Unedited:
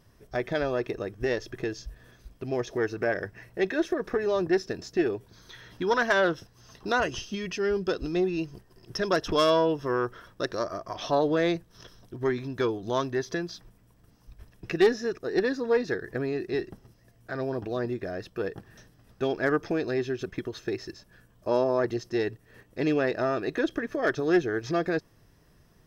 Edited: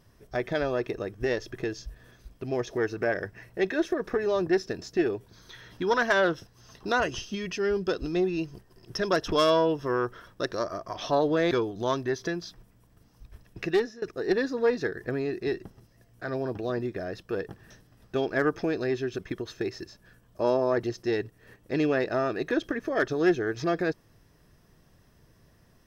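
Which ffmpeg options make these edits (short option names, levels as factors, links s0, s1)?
-filter_complex "[0:a]asplit=3[s0][s1][s2];[s0]atrim=end=11.512[s3];[s1]atrim=start=12.578:end=15.09,asetpts=PTS-STARTPTS,afade=t=out:st=2.102:d=0.41:silence=0.0944061[s4];[s2]atrim=start=15.09,asetpts=PTS-STARTPTS,afade=t=in:d=0.004:c=hsin:silence=0.0944061[s5];[s4][s5]concat=n=2:v=0:a=1[s6];[s3][s6]acrossfade=d=0.004:c1=hsin:c2=hsin"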